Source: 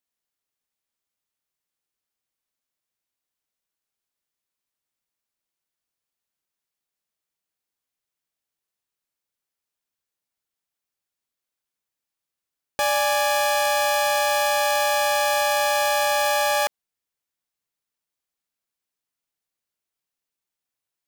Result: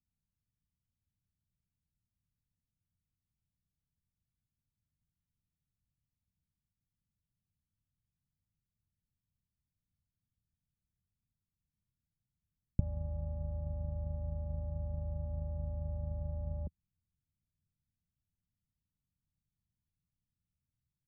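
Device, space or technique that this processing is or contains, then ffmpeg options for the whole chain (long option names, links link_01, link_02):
the neighbour's flat through the wall: -af "lowpass=frequency=170:width=0.5412,lowpass=frequency=170:width=1.3066,equalizer=frequency=81:width_type=o:width=0.97:gain=4.5,volume=17dB"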